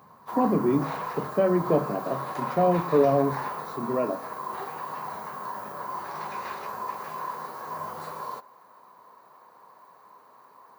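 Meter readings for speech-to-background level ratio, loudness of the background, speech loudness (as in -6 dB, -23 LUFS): 8.5 dB, -34.5 LUFS, -26.0 LUFS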